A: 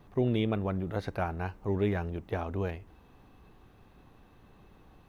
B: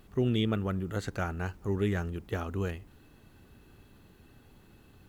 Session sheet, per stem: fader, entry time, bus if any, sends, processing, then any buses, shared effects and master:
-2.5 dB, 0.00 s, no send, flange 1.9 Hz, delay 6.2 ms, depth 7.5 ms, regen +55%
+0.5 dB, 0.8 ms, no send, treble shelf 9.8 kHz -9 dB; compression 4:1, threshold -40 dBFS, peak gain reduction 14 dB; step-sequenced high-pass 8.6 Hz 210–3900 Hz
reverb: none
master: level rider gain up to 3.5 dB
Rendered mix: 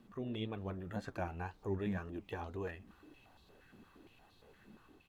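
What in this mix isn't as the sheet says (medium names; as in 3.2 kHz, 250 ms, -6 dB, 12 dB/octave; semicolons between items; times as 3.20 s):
stem A -2.5 dB -> -10.0 dB; stem B +0.5 dB -> -8.5 dB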